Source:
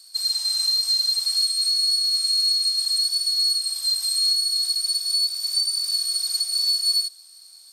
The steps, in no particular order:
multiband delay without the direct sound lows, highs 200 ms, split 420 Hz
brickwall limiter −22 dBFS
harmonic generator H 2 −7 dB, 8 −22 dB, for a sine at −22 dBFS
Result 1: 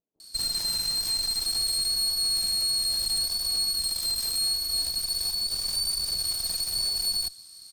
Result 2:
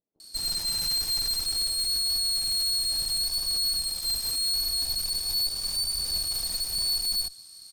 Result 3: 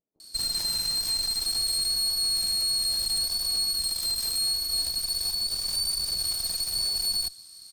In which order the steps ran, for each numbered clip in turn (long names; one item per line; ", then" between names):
brickwall limiter, then multiband delay without the direct sound, then harmonic generator
multiband delay without the direct sound, then harmonic generator, then brickwall limiter
multiband delay without the direct sound, then brickwall limiter, then harmonic generator